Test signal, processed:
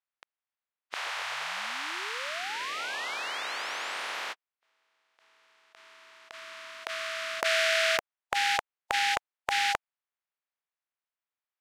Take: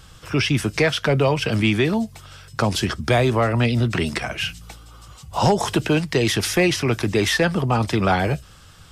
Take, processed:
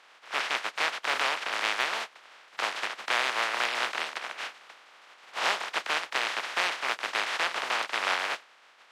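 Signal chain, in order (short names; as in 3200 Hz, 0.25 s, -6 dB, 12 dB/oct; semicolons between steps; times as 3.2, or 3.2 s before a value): spectral contrast lowered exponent 0.11; BPF 700–2400 Hz; overloaded stage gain 11.5 dB; gain -2 dB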